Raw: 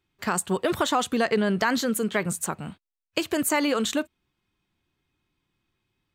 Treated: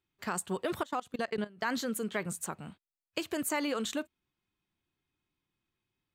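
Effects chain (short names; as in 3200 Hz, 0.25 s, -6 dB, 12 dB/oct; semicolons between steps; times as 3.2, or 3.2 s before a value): low shelf 82 Hz -3.5 dB; 0.82–1.66 level quantiser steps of 23 dB; gain -8.5 dB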